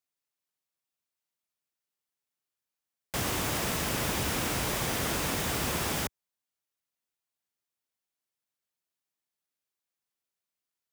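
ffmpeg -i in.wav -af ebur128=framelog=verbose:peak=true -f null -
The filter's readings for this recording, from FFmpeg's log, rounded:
Integrated loudness:
  I:         -29.8 LUFS
  Threshold: -39.8 LUFS
Loudness range:
  LRA:        10.2 LU
  Threshold: -52.3 LUFS
  LRA low:   -39.8 LUFS
  LRA high:  -29.6 LUFS
True peak:
  Peak:      -17.5 dBFS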